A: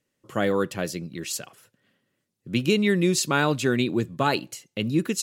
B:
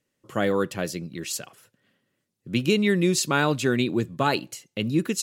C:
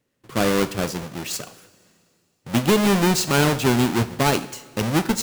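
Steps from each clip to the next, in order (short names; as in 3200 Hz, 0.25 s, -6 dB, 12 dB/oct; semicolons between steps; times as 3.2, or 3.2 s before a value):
nothing audible
half-waves squared off; two-slope reverb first 0.58 s, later 2.6 s, from -15 dB, DRR 10.5 dB; gain -1 dB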